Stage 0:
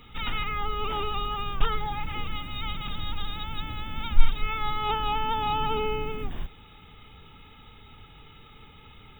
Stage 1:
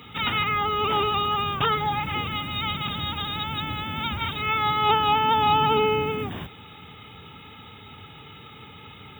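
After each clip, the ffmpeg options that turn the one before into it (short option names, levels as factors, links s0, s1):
-af "highpass=f=87:w=0.5412,highpass=f=87:w=1.3066,volume=2.37"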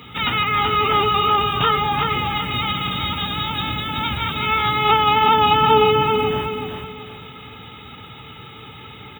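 -filter_complex "[0:a]asplit=2[s0][s1];[s1]adelay=16,volume=0.299[s2];[s0][s2]amix=inputs=2:normalize=0,aecho=1:1:379|758|1137|1516:0.596|0.191|0.061|0.0195,volume=1.58"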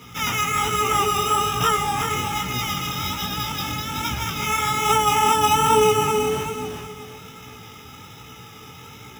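-af "acrusher=samples=5:mix=1:aa=0.000001,flanger=delay=16:depth=7.8:speed=1.2"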